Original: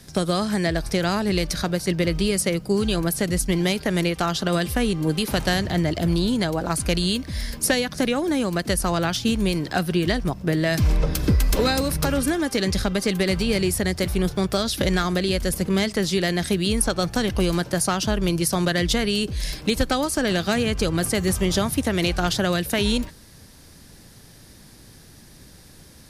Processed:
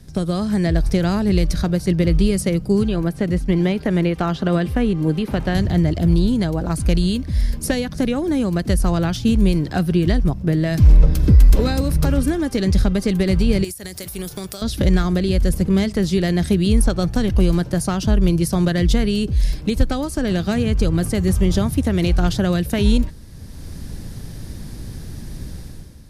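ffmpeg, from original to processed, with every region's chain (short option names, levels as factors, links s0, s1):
-filter_complex "[0:a]asettb=1/sr,asplit=3[s0][s1][s2];[s0]atrim=end=2.834[s3];[s1]atrim=start=2.83:end=5.55,asetpts=PTS-STARTPTS,afade=t=in:d=0.004:c=qsin,afade=t=out:st=2.716:d=0.004:c=qsin,lowshelf=f=110:g=-11,acrossover=split=3200[s4][s5];[s5]acompressor=threshold=0.00631:ratio=4:attack=1:release=60[s6];[s4][s6]amix=inputs=2:normalize=0[s7];[s2]atrim=start=5.546[s8];[s3][s7]acrossfade=d=0.004:c1=hsin:c2=qsin[s9];[s9][s8]acrossfade=d=0.004:c1=qsin:c2=hsin,asettb=1/sr,asplit=3[s10][s11][s12];[s10]atrim=end=13.644[s13];[s11]atrim=start=13.64:end=14.62,asetpts=PTS-STARTPTS,afade=t=in:d=0.004:c=qsin,afade=t=out:st=0.976:d=0.004:c=qsin,aemphasis=mode=production:type=riaa,acompressor=threshold=0.0562:ratio=20:attack=3.2:release=140:knee=1:detection=peak[s14];[s12]atrim=start=14.616[s15];[s13][s14]acrossfade=d=0.004:c1=hsin:c2=qsin[s16];[s16][s15]acrossfade=d=0.004:c1=qsin:c2=hsin,lowshelf=f=430:g=10.5,dynaudnorm=f=100:g=9:m=3.76,lowshelf=f=85:g=7.5,volume=0.447"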